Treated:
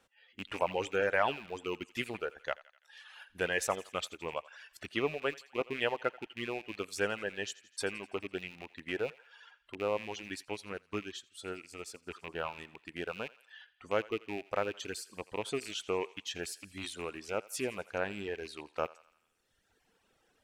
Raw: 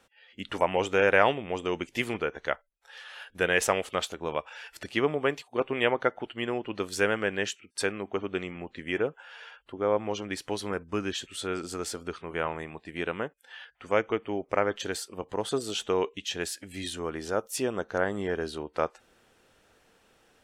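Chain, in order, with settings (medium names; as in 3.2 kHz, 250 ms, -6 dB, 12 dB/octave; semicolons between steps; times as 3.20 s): rattle on loud lows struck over -43 dBFS, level -23 dBFS; reverb removal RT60 1.4 s; on a send: thinning echo 84 ms, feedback 62%, high-pass 830 Hz, level -18.5 dB; 10.45–12.11 s: on the sum: upward expansion 1.5:1, over -44 dBFS; trim -6 dB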